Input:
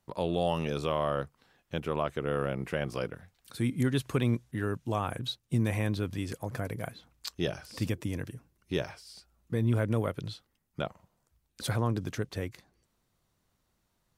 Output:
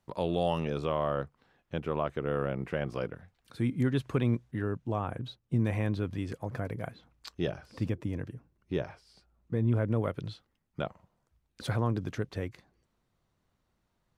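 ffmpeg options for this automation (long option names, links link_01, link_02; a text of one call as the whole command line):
ffmpeg -i in.wav -af "asetnsamples=nb_out_samples=441:pad=0,asendcmd='0.6 lowpass f 2100;4.62 lowpass f 1100;5.59 lowpass f 2100;7.51 lowpass f 1300;10.03 lowpass f 2900',lowpass=frequency=5700:poles=1" out.wav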